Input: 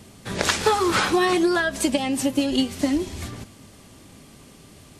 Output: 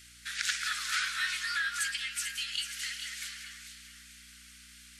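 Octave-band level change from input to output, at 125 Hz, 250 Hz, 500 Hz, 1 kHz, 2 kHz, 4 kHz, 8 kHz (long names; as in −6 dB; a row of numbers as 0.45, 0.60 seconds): below −25 dB, below −40 dB, below −40 dB, −17.0 dB, −5.0 dB, −5.0 dB, −5.5 dB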